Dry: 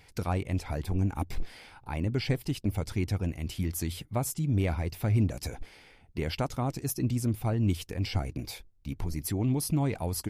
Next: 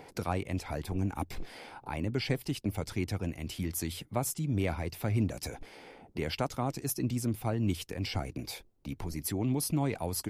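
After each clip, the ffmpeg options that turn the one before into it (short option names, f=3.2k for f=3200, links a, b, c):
-filter_complex "[0:a]lowshelf=f=130:g=-8.5,acrossover=split=170|1000|6300[a][b][c][d];[b]acompressor=mode=upward:threshold=-39dB:ratio=2.5[e];[a][e][c][d]amix=inputs=4:normalize=0"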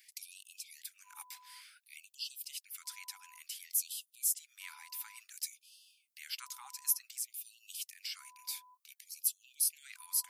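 -af "aderivative,aeval=exprs='val(0)+0.001*sin(2*PI*1000*n/s)':c=same,afftfilt=real='re*gte(b*sr/1024,770*pow(2600/770,0.5+0.5*sin(2*PI*0.56*pts/sr)))':imag='im*gte(b*sr/1024,770*pow(2600/770,0.5+0.5*sin(2*PI*0.56*pts/sr)))':win_size=1024:overlap=0.75,volume=2.5dB"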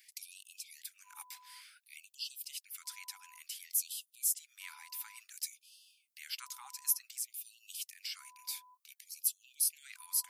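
-af anull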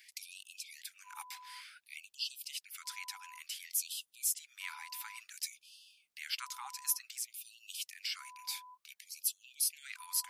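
-af "lowpass=f=3.6k:p=1,volume=7dB"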